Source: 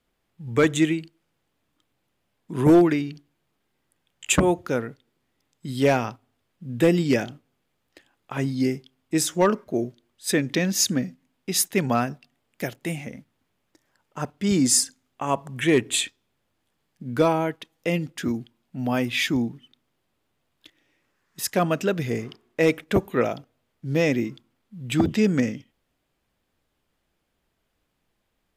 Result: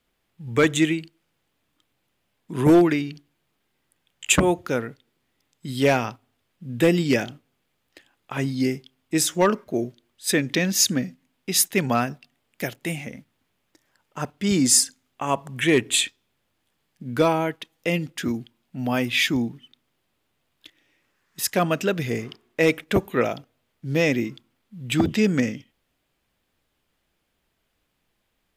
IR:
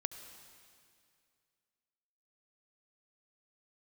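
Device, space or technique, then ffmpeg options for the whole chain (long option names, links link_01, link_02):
presence and air boost: -af "equalizer=frequency=2800:width_type=o:width=1.8:gain=3.5,highshelf=frequency=9700:gain=5"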